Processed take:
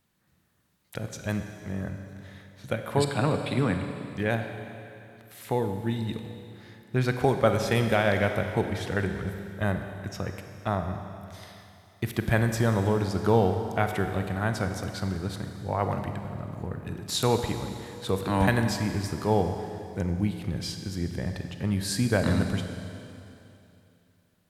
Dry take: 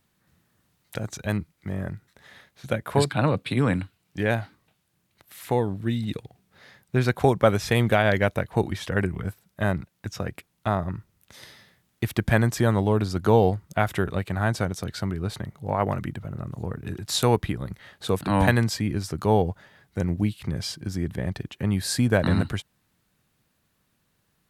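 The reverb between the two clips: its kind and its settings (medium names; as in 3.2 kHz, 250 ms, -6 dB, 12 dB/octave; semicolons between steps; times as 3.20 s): Schroeder reverb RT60 2.8 s, combs from 31 ms, DRR 6 dB; trim -3.5 dB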